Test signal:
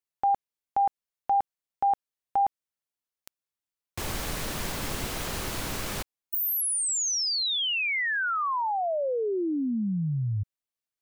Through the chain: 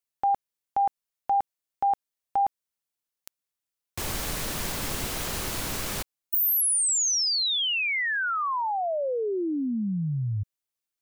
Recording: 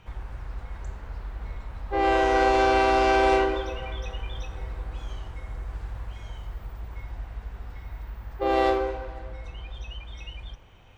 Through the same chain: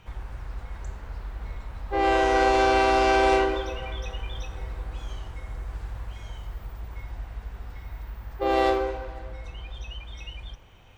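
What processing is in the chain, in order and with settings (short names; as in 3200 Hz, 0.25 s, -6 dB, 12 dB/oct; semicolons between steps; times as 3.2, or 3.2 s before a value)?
high shelf 4600 Hz +4.5 dB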